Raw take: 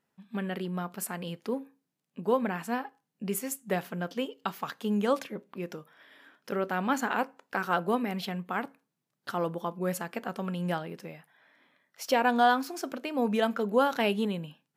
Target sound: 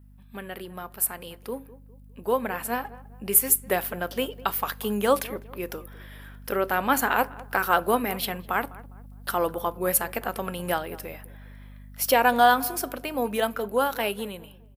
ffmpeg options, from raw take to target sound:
-filter_complex "[0:a]equalizer=f=140:w=1.1:g=-14.5,asplit=2[a][b];[b]adelay=203,lowpass=f=1.3k:p=1,volume=-18dB,asplit=2[c][d];[d]adelay=203,lowpass=f=1.3k:p=1,volume=0.39,asplit=2[e][f];[f]adelay=203,lowpass=f=1.3k:p=1,volume=0.39[g];[c][e][g]amix=inputs=3:normalize=0[h];[a][h]amix=inputs=2:normalize=0,aeval=exprs='val(0)+0.00316*(sin(2*PI*50*n/s)+sin(2*PI*2*50*n/s)/2+sin(2*PI*3*50*n/s)/3+sin(2*PI*4*50*n/s)/4+sin(2*PI*5*50*n/s)/5)':c=same,dynaudnorm=f=250:g=21:m=7dB,aexciter=amount=4.6:drive=5.5:freq=9k"

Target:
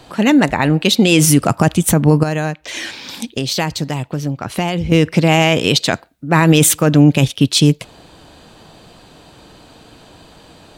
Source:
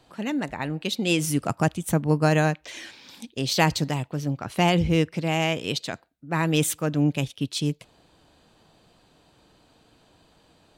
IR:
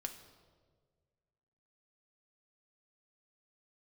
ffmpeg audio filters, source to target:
-filter_complex "[0:a]asettb=1/sr,asplit=3[a][b][c];[a]atrim=end=2.234[d];[b]atrim=start=2.23:end=4.92,asetpts=PTS-STARTPTS,afade=t=in:d=0.004:c=qsin,afade=t=out:st=2.686:d=0.004:c=qsin,acompressor=threshold=-37dB:ratio=3[e];[c]atrim=start=4.916[f];[d][e]acrossfade=d=0.004:c1=hsin:c2=qsin[g];[g][f]acrossfade=d=0.004:c1=qsin:c2=hsin,alimiter=level_in=17dB:limit=-1dB:release=50:level=0:latency=1,volume=-1dB"

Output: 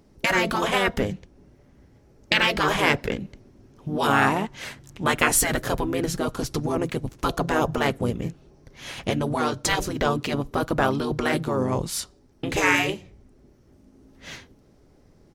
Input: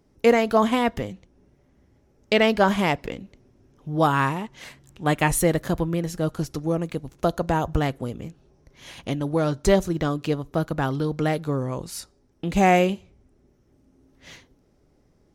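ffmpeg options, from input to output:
-filter_complex "[0:a]asplit=2[a][b];[b]asetrate=35002,aresample=44100,atempo=1.25992,volume=-6dB[c];[a][c]amix=inputs=2:normalize=0,afftfilt=real='re*lt(hypot(re,im),0.398)':imag='im*lt(hypot(re,im),0.398)':win_size=1024:overlap=0.75,volume=5dB"

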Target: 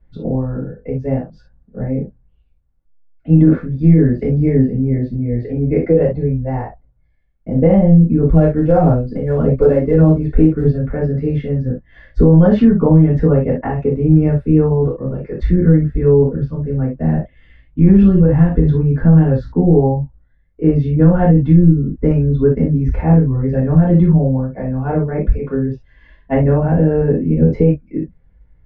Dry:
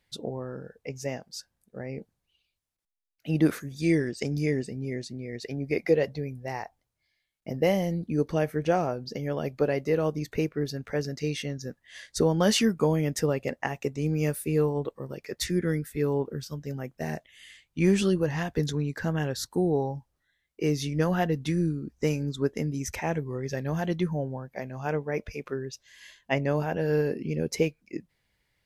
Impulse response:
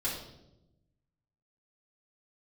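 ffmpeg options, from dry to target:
-filter_complex "[0:a]lowpass=1.5k,aemphasis=mode=reproduction:type=riaa,asettb=1/sr,asplit=3[a][b][c];[a]atrim=end=8.284[d];[b]atrim=start=8.28:end=10.79,asetpts=PTS-STARTPTS,afade=t=in:d=0.004:c=qsin,afade=t=out:st=2.506:d=0.004:c=qsin,aphaser=in_gain=1:out_gain=1:delay=3.9:decay=0.4:speed=1.7:type=triangular[e];[c]atrim=start=10.786[f];[d][e]acrossfade=d=0.004:c1=hsin:c2=qsin[g];[g][f]acrossfade=d=0.004:c1=qsin:c2=hsin[h];[1:a]atrim=start_sample=2205,atrim=end_sample=3528[i];[h][i]afir=irnorm=-1:irlink=0,alimiter=level_in=5.5dB:limit=-1dB:release=50:level=0:latency=1,volume=-1dB"

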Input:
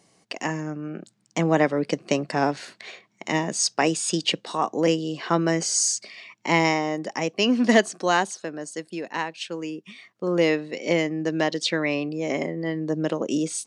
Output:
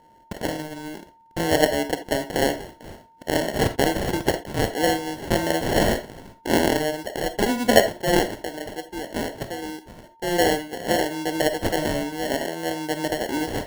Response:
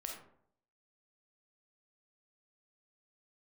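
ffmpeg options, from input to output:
-filter_complex "[0:a]bass=f=250:g=-10,treble=f=4k:g=2,acrusher=samples=36:mix=1:aa=0.000001,aeval=exprs='val(0)+0.00178*sin(2*PI*910*n/s)':c=same,asplit=2[a][b];[1:a]atrim=start_sample=2205,atrim=end_sample=3969[c];[b][c]afir=irnorm=-1:irlink=0,volume=2dB[d];[a][d]amix=inputs=2:normalize=0,volume=-3.5dB"

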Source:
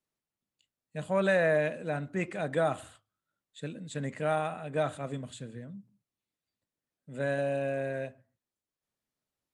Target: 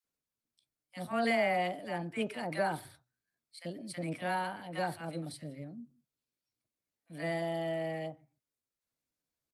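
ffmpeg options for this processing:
-filter_complex "[0:a]equalizer=f=160:t=o:w=0.33:g=-5,equalizer=f=315:t=o:w=0.33:g=-4,equalizer=f=630:t=o:w=0.33:g=-5,equalizer=f=1.6k:t=o:w=0.33:g=-3,equalizer=f=2.5k:t=o:w=0.33:g=-4,asetrate=52444,aresample=44100,atempo=0.840896,acrossover=split=990[a][b];[a]adelay=40[c];[c][b]amix=inputs=2:normalize=0"

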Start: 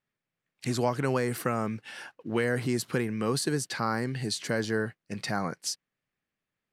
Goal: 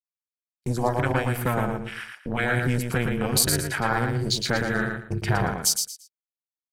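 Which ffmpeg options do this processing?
-filter_complex "[0:a]afwtdn=0.0112,agate=range=-37dB:threshold=-49dB:ratio=16:detection=peak,aemphasis=mode=production:type=50fm,aecho=1:1:1.3:0.68,asplit=3[a][b][c];[a]afade=t=out:st=4.97:d=0.02[d];[b]asubboost=boost=10:cutoff=79,afade=t=in:st=4.97:d=0.02,afade=t=out:st=5.38:d=0.02[e];[c]afade=t=in:st=5.38:d=0.02[f];[d][e][f]amix=inputs=3:normalize=0,asplit=2[g][h];[h]acompressor=threshold=-38dB:ratio=6,volume=1dB[i];[g][i]amix=inputs=2:normalize=0,tremolo=f=240:d=0.919,aecho=1:1:114|228|342:0.562|0.135|0.0324,volume=5dB"

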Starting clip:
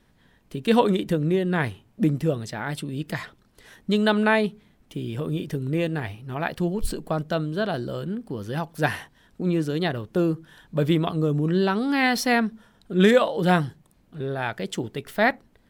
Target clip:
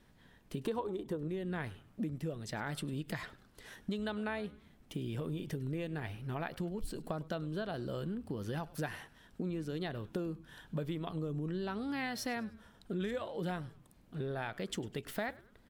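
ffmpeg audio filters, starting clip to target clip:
-filter_complex "[0:a]asettb=1/sr,asplit=3[a][b][c];[a]atrim=end=0.644[d];[b]atrim=start=0.64:end=1.28,asetpts=PTS-STARTPTS,afade=t=in:d=0.004:c=qsin,afade=t=out:st=0.636:d=0.004:c=qsin,equalizer=f=400:t=o:w=0.67:g=11,equalizer=f=1k:t=o:w=0.67:g=11,equalizer=f=2.5k:t=o:w=0.67:g=-4[e];[c]atrim=start=1.276[f];[d][e]acrossfade=d=0.004:c1=hsin:c2=qsin[g];[g][f]acrossfade=d=0.004:c1=qsin:c2=hsin,acompressor=threshold=-32dB:ratio=8,asplit=4[h][i][j][k];[i]adelay=101,afreqshift=-140,volume=-20dB[l];[j]adelay=202,afreqshift=-280,volume=-27.5dB[m];[k]adelay=303,afreqshift=-420,volume=-35.1dB[n];[h][l][m][n]amix=inputs=4:normalize=0,volume=-3dB"

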